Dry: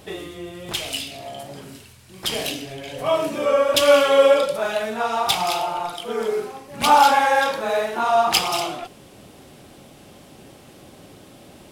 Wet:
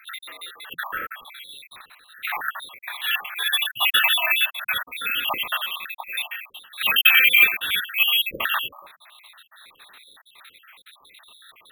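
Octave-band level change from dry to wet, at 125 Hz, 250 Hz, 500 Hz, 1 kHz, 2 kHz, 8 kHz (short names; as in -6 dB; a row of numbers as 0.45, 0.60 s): under -15 dB, under -15 dB, -25.5 dB, -12.0 dB, +7.0 dB, -4.0 dB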